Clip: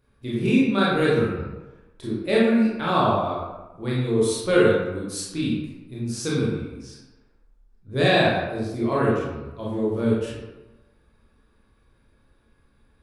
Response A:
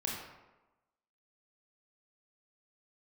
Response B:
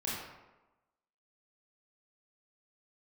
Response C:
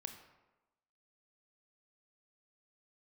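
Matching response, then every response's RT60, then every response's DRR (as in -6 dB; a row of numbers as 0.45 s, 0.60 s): B; 1.1 s, 1.1 s, 1.1 s; -3.0 dB, -7.0 dB, 6.0 dB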